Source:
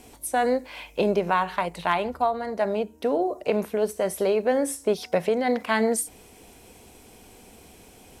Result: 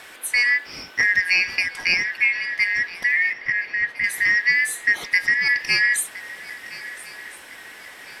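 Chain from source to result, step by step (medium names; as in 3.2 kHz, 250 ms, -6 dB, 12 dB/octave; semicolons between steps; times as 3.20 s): four frequency bands reordered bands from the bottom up 3142; band noise 260–3400 Hz -50 dBFS; 3.33–4.04 s: distance through air 300 m; shuffle delay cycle 1354 ms, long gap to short 3:1, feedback 43%, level -18.5 dB; trim +3.5 dB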